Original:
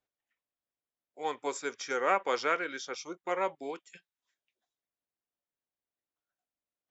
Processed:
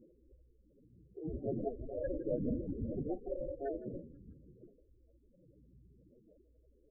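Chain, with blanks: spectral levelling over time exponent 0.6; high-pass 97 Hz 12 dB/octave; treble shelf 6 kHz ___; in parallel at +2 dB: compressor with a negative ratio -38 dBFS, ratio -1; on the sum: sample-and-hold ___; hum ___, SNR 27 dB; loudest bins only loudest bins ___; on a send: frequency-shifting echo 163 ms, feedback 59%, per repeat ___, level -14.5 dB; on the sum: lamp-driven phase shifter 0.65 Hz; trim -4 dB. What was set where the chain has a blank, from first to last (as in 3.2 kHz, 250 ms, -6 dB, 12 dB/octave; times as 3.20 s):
+10.5 dB, 40×, 60 Hz, 8, -44 Hz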